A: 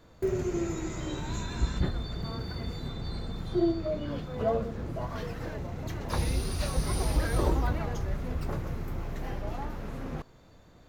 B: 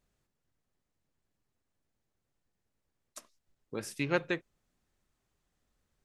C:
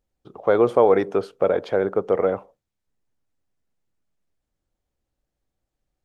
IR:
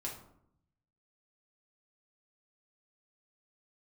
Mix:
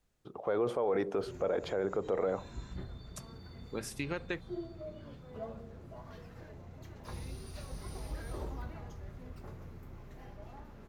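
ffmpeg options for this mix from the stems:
-filter_complex "[0:a]adelay=950,volume=-18dB,asplit=2[a][b];[b]volume=-3dB[c];[1:a]acompressor=threshold=-31dB:ratio=6,volume=0dB[d];[2:a]alimiter=limit=-13.5dB:level=0:latency=1:release=14,volume=-4dB,asplit=2[e][f];[f]apad=whole_len=522029[g];[a][g]sidechaincompress=threshold=-34dB:ratio=8:attack=16:release=118[h];[3:a]atrim=start_sample=2205[i];[c][i]afir=irnorm=-1:irlink=0[j];[h][d][e][j]amix=inputs=4:normalize=0,alimiter=limit=-23dB:level=0:latency=1:release=50"

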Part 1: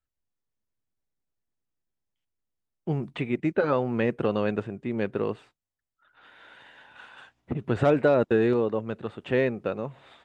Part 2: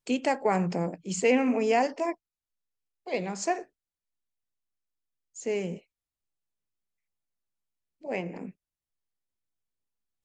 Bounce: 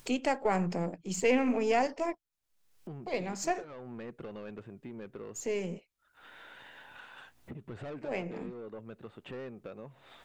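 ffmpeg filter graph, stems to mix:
-filter_complex "[0:a]asoftclip=type=tanh:threshold=-22.5dB,volume=-20dB[a];[1:a]aeval=exprs='if(lt(val(0),0),0.708*val(0),val(0))':c=same,volume=-2dB[b];[a][b]amix=inputs=2:normalize=0,acompressor=mode=upward:threshold=-35dB:ratio=2.5"

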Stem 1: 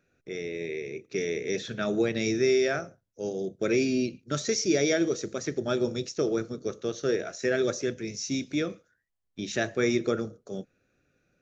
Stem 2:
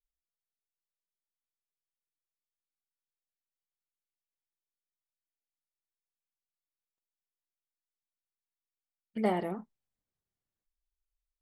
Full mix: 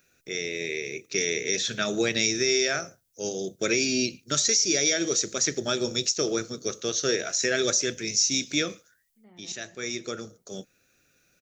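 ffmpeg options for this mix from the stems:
-filter_complex "[0:a]crystalizer=i=8:c=0,volume=-1dB[a];[1:a]lowpass=f=1.6k:p=1,equalizer=f=660:w=0.63:g=-14,aeval=exprs='val(0)*pow(10,-26*if(lt(mod(-2.1*n/s,1),2*abs(-2.1)/1000),1-mod(-2.1*n/s,1)/(2*abs(-2.1)/1000),(mod(-2.1*n/s,1)-2*abs(-2.1)/1000)/(1-2*abs(-2.1)/1000))/20)':c=same,volume=-6.5dB,asplit=3[b][c][d];[c]volume=-8dB[e];[d]apad=whole_len=503206[f];[a][f]sidechaincompress=threshold=-60dB:ratio=8:attack=5.6:release=1190[g];[e]aecho=0:1:224|448|672|896|1120|1344|1568|1792:1|0.55|0.303|0.166|0.0915|0.0503|0.0277|0.0152[h];[g][b][h]amix=inputs=3:normalize=0,alimiter=limit=-12.5dB:level=0:latency=1:release=234"

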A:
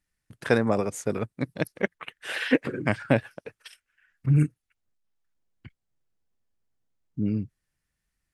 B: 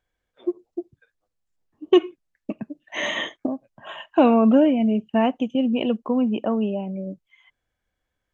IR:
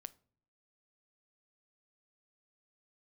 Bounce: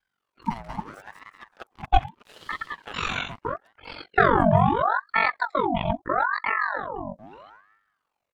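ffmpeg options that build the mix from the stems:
-filter_complex "[0:a]highpass=f=200:w=0.5412,highpass=f=200:w=1.3066,aeval=exprs='sgn(val(0))*max(abs(val(0))-0.0168,0)':c=same,volume=-10.5dB,asplit=2[a][b];[b]volume=-4dB[c];[1:a]aeval=exprs='val(0)*sin(2*PI*23*n/s)':c=same,volume=3dB[d];[c]aecho=0:1:186|372|558|744:1|0.25|0.0625|0.0156[e];[a][d][e]amix=inputs=3:normalize=0,aeval=exprs='val(0)*sin(2*PI*980*n/s+980*0.6/0.77*sin(2*PI*0.77*n/s))':c=same"

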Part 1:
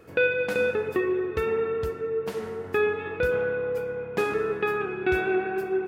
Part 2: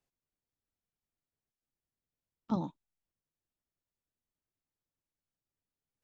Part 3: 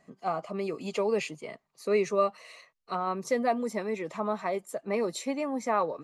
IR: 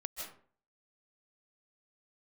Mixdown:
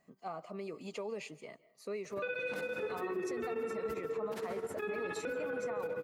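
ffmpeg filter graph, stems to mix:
-filter_complex "[0:a]highpass=160,tremolo=f=15:d=0.95,adelay=2050,volume=-4dB,asplit=2[a][b];[b]volume=-4dB[c];[1:a]aemphasis=mode=production:type=bsi,volume=-15.5dB,asplit=2[d][e];[e]volume=-5dB[f];[2:a]acompressor=threshold=-28dB:ratio=6,volume=-9.5dB,asplit=2[g][h];[h]volume=-15.5dB[i];[3:a]atrim=start_sample=2205[j];[c][f][i]amix=inputs=3:normalize=0[k];[k][j]afir=irnorm=-1:irlink=0[l];[a][d][g][l]amix=inputs=4:normalize=0,alimiter=level_in=6dB:limit=-24dB:level=0:latency=1:release=17,volume=-6dB"

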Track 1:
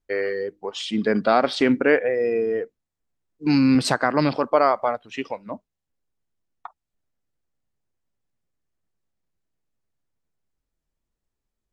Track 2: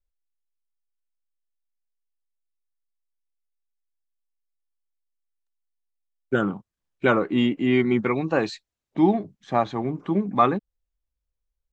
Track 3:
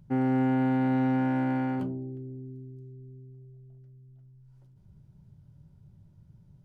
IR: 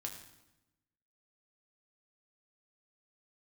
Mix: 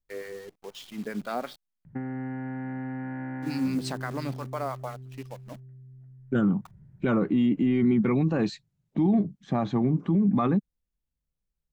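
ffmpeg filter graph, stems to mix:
-filter_complex "[0:a]bandreject=f=60:t=h:w=6,bandreject=f=120:t=h:w=6,bandreject=f=180:t=h:w=6,acrossover=split=910[a][b];[a]aeval=exprs='val(0)*(1-0.7/2+0.7/2*cos(2*PI*5.8*n/s))':c=same[c];[b]aeval=exprs='val(0)*(1-0.7/2-0.7/2*cos(2*PI*5.8*n/s))':c=same[d];[c][d]amix=inputs=2:normalize=0,acrusher=bits=7:dc=4:mix=0:aa=0.000001,volume=-11dB,asplit=3[e][f][g];[e]atrim=end=1.56,asetpts=PTS-STARTPTS,afade=t=out:st=1.556:d=0.004:c=hsin[h];[f]atrim=start=1.56:end=3.01,asetpts=PTS-STARTPTS,volume=0[i];[g]atrim=start=3.01,asetpts=PTS-STARTPTS,afade=t=in:d=0.004:c=hsin[j];[h][i][j]concat=n=3:v=0:a=1[k];[1:a]equalizer=f=190:t=o:w=1.7:g=9.5,volume=-4dB[l];[2:a]lowpass=f=2.5k:w=0.5412,lowpass=f=2.5k:w=1.3066,equalizer=f=1.8k:t=o:w=0.4:g=12,acompressor=threshold=-32dB:ratio=6,adelay=1850,volume=-2dB,asplit=2[m][n];[n]volume=-20.5dB,aecho=0:1:201|402|603|804|1005|1206|1407|1608|1809:1|0.59|0.348|0.205|0.121|0.0715|0.0422|0.0249|0.0147[o];[k][l][m][o]amix=inputs=4:normalize=0,equalizer=f=160:w=1:g=5.5,alimiter=limit=-16.5dB:level=0:latency=1:release=25"

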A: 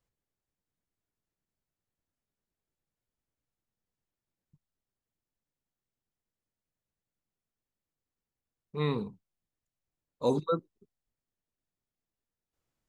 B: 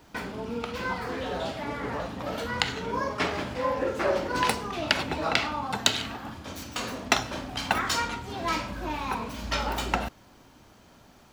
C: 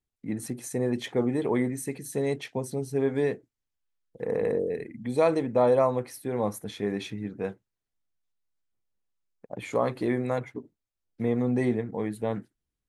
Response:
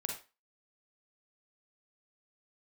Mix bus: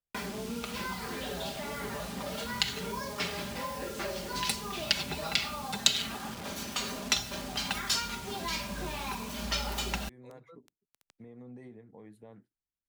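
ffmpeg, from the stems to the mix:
-filter_complex "[0:a]volume=-15.5dB[a];[1:a]aecho=1:1:5:0.68,acrusher=bits=6:mix=0:aa=0.000001,lowshelf=f=120:g=-6.5,volume=1.5dB[b];[2:a]alimiter=limit=-23dB:level=0:latency=1:release=161,volume=-17dB,asplit=2[c][d];[d]apad=whole_len=568384[e];[a][e]sidechaincompress=threshold=-59dB:ratio=5:attack=43:release=999[f];[f][b][c]amix=inputs=3:normalize=0,highshelf=f=6.4k:g=-4,acrossover=split=150|3000[g][h][i];[h]acompressor=threshold=-37dB:ratio=6[j];[g][j][i]amix=inputs=3:normalize=0"

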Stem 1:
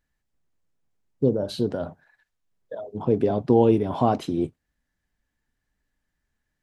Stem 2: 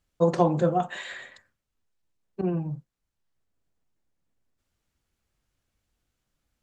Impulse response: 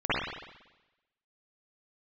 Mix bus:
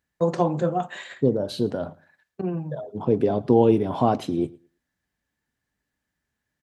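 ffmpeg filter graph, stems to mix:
-filter_complex "[0:a]volume=0.5dB,asplit=2[a][b];[b]volume=-23dB[c];[1:a]agate=range=-19dB:threshold=-38dB:ratio=16:detection=peak,volume=-0.5dB[d];[c]aecho=0:1:111|222|333:1|0.18|0.0324[e];[a][d][e]amix=inputs=3:normalize=0,highpass=81"

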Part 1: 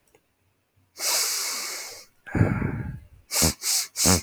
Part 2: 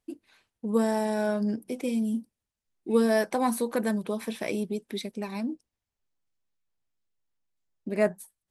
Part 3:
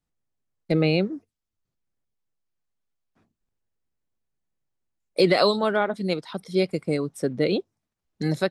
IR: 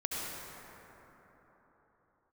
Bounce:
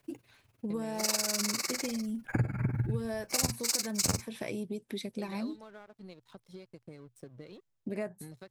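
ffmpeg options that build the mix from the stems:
-filter_complex "[0:a]tremolo=f=20:d=0.93,volume=1dB[a];[1:a]acompressor=threshold=-32dB:ratio=6,volume=-1.5dB[b];[2:a]acompressor=threshold=-29dB:ratio=16,aeval=exprs='sgn(val(0))*max(abs(val(0))-0.00501,0)':c=same,volume=-15dB[c];[a][b][c]amix=inputs=3:normalize=0,equalizer=f=120:t=o:w=0.36:g=14,acompressor=threshold=-26dB:ratio=8"

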